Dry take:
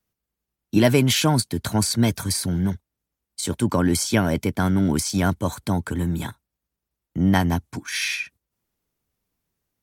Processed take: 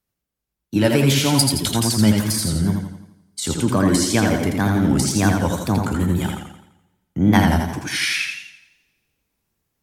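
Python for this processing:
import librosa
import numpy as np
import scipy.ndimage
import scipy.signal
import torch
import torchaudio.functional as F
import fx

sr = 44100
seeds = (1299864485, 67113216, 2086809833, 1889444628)

p1 = fx.high_shelf_res(x, sr, hz=2200.0, db=7.5, q=1.5, at=(1.25, 1.71))
p2 = fx.rider(p1, sr, range_db=10, speed_s=2.0)
p3 = p1 + (p2 * librosa.db_to_amplitude(3.0))
p4 = fx.wow_flutter(p3, sr, seeds[0], rate_hz=2.1, depth_cents=140.0)
p5 = p4 + fx.echo_single(p4, sr, ms=79, db=-9.5, dry=0)
p6 = fx.rev_double_slope(p5, sr, seeds[1], early_s=0.44, late_s=1.6, knee_db=-18, drr_db=12.5)
p7 = fx.echo_warbled(p6, sr, ms=85, feedback_pct=47, rate_hz=2.8, cents=72, wet_db=-4.5)
y = p7 * librosa.db_to_amplitude(-7.0)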